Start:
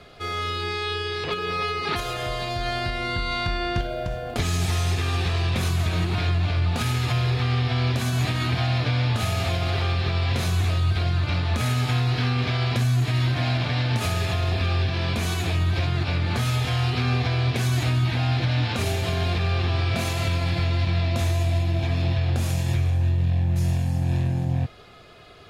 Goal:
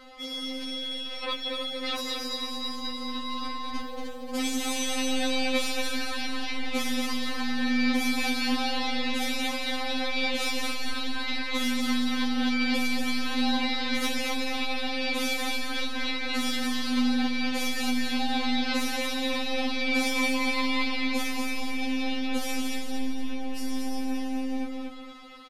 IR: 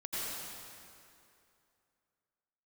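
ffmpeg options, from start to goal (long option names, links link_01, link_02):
-af "aeval=exprs='0.224*(cos(1*acos(clip(val(0)/0.224,-1,1)))-cos(1*PI/2))+0.0224*(cos(2*acos(clip(val(0)/0.224,-1,1)))-cos(2*PI/2))':channel_layout=same,aecho=1:1:231|462|693|924:0.596|0.197|0.0649|0.0214,afftfilt=real='re*3.46*eq(mod(b,12),0)':imag='im*3.46*eq(mod(b,12),0)':win_size=2048:overlap=0.75,volume=1.5dB"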